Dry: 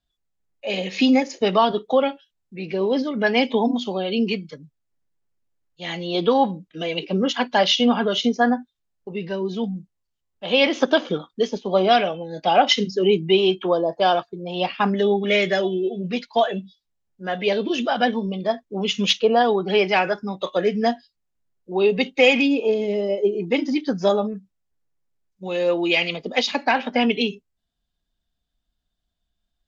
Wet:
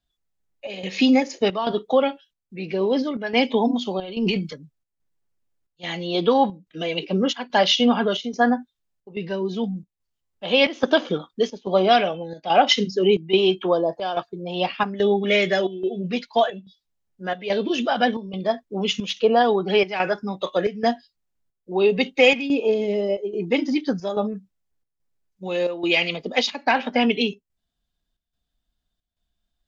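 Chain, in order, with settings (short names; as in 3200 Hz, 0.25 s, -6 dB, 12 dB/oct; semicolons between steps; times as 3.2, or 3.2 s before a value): 3.99–4.53 transient shaper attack -11 dB, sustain +8 dB; chopper 1.2 Hz, depth 65%, duty 80%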